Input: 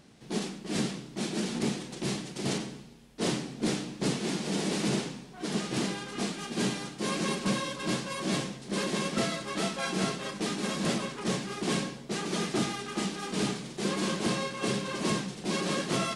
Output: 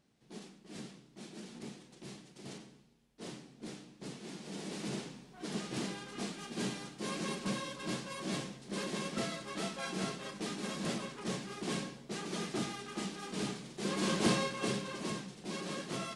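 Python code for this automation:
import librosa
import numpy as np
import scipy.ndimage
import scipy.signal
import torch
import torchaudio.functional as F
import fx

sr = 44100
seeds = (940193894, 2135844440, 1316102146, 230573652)

y = fx.gain(x, sr, db=fx.line((4.04, -16.5), (5.34, -7.5), (13.76, -7.5), (14.25, 0.5), (15.13, -10.0)))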